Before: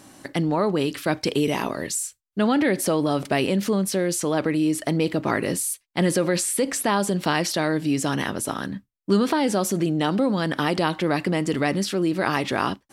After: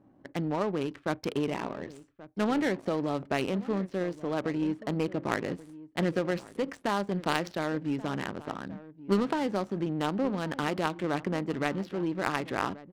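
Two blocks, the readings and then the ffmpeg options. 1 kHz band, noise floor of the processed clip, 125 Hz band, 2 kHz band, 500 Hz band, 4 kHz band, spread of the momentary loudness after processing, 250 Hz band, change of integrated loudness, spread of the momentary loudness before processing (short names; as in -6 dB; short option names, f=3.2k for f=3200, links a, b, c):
-7.0 dB, -59 dBFS, -8.0 dB, -7.5 dB, -7.5 dB, -11.0 dB, 9 LU, -8.0 dB, -8.0 dB, 5 LU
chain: -af "aecho=1:1:1130:0.168,adynamicsmooth=sensitivity=2.5:basefreq=620,aeval=exprs='0.422*(cos(1*acos(clip(val(0)/0.422,-1,1)))-cos(1*PI/2))+0.075*(cos(3*acos(clip(val(0)/0.422,-1,1)))-cos(3*PI/2))+0.0133*(cos(6*acos(clip(val(0)/0.422,-1,1)))-cos(6*PI/2))+0.0075*(cos(8*acos(clip(val(0)/0.422,-1,1)))-cos(8*PI/2))':c=same,volume=-2.5dB"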